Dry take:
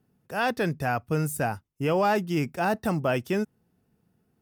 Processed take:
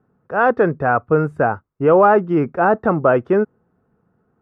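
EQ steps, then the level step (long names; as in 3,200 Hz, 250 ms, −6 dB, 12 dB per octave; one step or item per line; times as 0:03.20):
parametric band 490 Hz +5 dB 0.81 octaves
dynamic equaliser 380 Hz, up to +5 dB, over −37 dBFS, Q 1.1
low-pass with resonance 1,300 Hz, resonance Q 3
+4.0 dB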